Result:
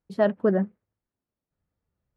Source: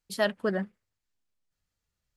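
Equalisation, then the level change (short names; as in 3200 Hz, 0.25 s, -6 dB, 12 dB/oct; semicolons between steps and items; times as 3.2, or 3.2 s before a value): HPF 100 Hz 6 dB/oct; LPF 2100 Hz 6 dB/oct; tilt shelf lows +9 dB, about 1500 Hz; 0.0 dB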